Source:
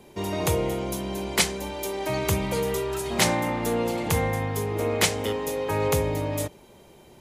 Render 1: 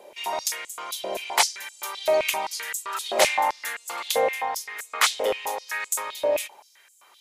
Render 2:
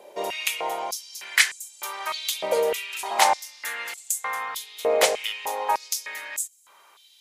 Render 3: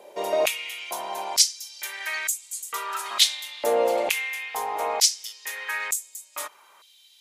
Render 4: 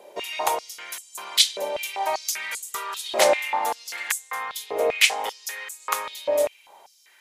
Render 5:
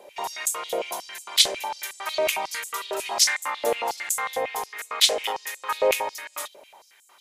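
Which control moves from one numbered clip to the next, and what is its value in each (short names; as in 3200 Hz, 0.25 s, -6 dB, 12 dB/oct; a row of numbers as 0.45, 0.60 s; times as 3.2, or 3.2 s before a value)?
stepped high-pass, rate: 7.7, 3.3, 2.2, 5.1, 11 Hz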